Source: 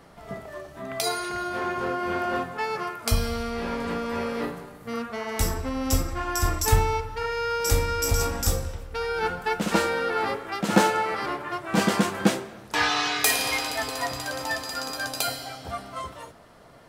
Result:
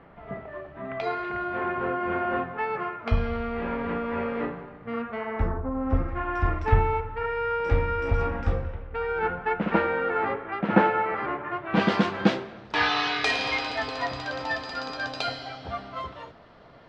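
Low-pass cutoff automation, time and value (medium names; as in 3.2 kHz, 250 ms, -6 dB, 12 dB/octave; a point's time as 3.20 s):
low-pass 24 dB/octave
5.19 s 2.6 kHz
5.70 s 1.2 kHz
6.15 s 2.4 kHz
11.51 s 2.4 kHz
11.93 s 4.3 kHz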